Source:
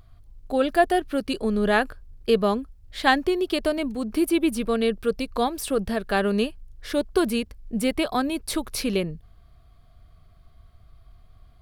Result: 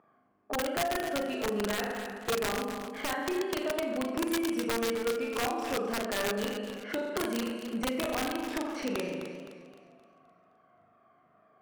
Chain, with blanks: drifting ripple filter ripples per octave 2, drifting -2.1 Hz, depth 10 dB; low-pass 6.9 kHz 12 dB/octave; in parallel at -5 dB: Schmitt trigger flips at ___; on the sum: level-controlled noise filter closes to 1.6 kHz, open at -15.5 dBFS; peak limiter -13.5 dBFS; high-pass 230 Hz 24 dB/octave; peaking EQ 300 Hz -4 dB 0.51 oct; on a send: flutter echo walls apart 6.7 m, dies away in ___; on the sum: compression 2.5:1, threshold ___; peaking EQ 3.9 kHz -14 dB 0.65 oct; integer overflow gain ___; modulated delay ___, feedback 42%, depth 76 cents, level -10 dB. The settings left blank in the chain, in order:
-15 dBFS, 0.92 s, -33 dBFS, 24 dB, 260 ms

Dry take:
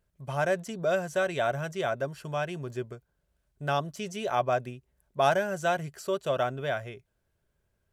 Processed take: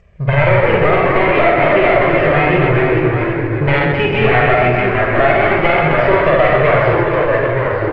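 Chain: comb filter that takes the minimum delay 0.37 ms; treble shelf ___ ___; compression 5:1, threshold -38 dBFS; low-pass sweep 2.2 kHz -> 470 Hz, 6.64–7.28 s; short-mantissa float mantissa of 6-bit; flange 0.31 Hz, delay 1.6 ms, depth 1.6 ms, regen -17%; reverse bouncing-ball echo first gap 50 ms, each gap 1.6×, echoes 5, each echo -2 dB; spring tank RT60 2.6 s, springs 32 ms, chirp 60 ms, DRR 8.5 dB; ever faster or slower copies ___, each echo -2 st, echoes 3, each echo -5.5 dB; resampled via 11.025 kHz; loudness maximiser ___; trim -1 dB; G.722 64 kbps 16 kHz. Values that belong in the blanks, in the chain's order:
2.5 kHz, -8 dB, 106 ms, +28 dB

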